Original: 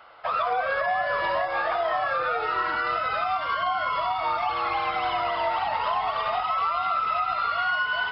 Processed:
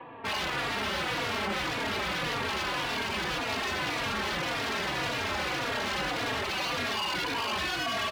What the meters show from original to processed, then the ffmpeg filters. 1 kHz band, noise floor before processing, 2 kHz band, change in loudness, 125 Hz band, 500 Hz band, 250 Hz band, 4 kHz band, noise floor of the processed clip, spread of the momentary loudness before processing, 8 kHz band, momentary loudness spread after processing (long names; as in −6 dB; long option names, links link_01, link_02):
−9.5 dB, −30 dBFS, −2.5 dB, −4.5 dB, +9.0 dB, −5.5 dB, +10.0 dB, +4.5 dB, −33 dBFS, 2 LU, can't be measured, 1 LU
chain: -filter_complex "[0:a]highpass=frequency=170:width_type=q:width=0.5412,highpass=frequency=170:width_type=q:width=1.307,lowpass=frequency=3500:width_type=q:width=0.5176,lowpass=frequency=3500:width_type=q:width=0.7071,lowpass=frequency=3500:width_type=q:width=1.932,afreqshift=-350,acrossover=split=920[link_01][link_02];[link_02]alimiter=level_in=5dB:limit=-24dB:level=0:latency=1,volume=-5dB[link_03];[link_01][link_03]amix=inputs=2:normalize=0,aeval=exprs='0.0266*(abs(mod(val(0)/0.0266+3,4)-2)-1)':channel_layout=same,highpass=47,asplit=2[link_04][link_05];[link_05]adelay=3.6,afreqshift=-1.8[link_06];[link_04][link_06]amix=inputs=2:normalize=1,volume=8dB"